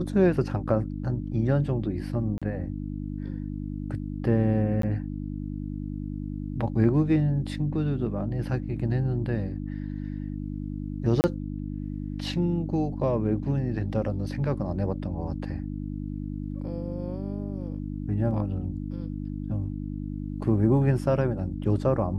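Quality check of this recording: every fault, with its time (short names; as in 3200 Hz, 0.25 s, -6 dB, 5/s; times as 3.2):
hum 50 Hz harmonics 6 -33 dBFS
2.38–2.42 gap 36 ms
4.82–4.83 gap 13 ms
11.21–11.24 gap 29 ms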